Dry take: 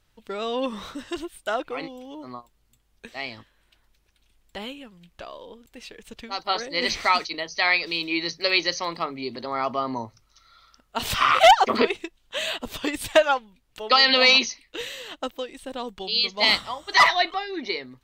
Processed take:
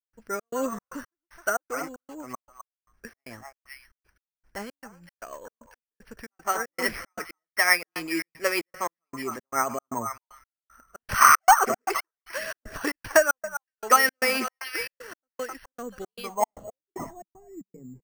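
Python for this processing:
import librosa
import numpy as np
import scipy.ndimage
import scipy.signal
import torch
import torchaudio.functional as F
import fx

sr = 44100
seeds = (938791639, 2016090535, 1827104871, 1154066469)

p1 = x + fx.echo_stepped(x, sr, ms=259, hz=1000.0, octaves=1.4, feedback_pct=70, wet_db=-6.0, dry=0)
p2 = fx.step_gate(p1, sr, bpm=115, pattern='.xx.xx.x..xx', floor_db=-60.0, edge_ms=4.5)
p3 = fx.rotary_switch(p2, sr, hz=8.0, then_hz=1.2, switch_at_s=10.12)
p4 = fx.filter_sweep_lowpass(p3, sr, from_hz=1600.0, to_hz=190.0, start_s=16.11, end_s=17.24, q=2.9)
y = np.repeat(scipy.signal.resample_poly(p4, 1, 6), 6)[:len(p4)]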